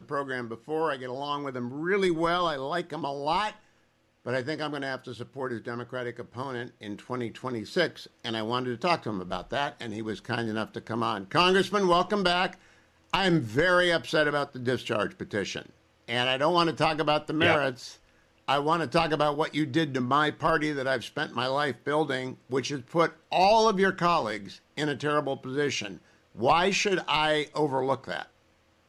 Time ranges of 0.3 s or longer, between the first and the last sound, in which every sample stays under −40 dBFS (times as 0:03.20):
0:03.53–0:04.26
0:12.53–0:13.13
0:15.70–0:16.08
0:17.93–0:18.48
0:25.97–0:26.35